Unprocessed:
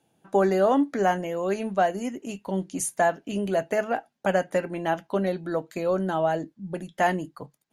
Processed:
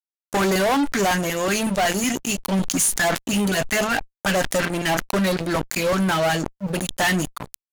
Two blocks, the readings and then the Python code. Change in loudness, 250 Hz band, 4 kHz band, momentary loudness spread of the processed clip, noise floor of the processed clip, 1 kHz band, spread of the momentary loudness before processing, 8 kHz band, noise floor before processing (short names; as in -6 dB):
+4.5 dB, +5.5 dB, +16.5 dB, 6 LU, under -85 dBFS, +2.0 dB, 10 LU, +13.5 dB, -73 dBFS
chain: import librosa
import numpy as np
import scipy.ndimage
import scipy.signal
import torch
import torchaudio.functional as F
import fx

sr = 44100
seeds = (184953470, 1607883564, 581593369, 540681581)

y = fx.filter_lfo_notch(x, sr, shape='saw_up', hz=5.4, low_hz=360.0, high_hz=4400.0, q=0.91)
y = fx.tone_stack(y, sr, knobs='5-5-5')
y = fx.fuzz(y, sr, gain_db=48.0, gate_db=-56.0)
y = fx.sustainer(y, sr, db_per_s=55.0)
y = y * librosa.db_to_amplitude(-4.0)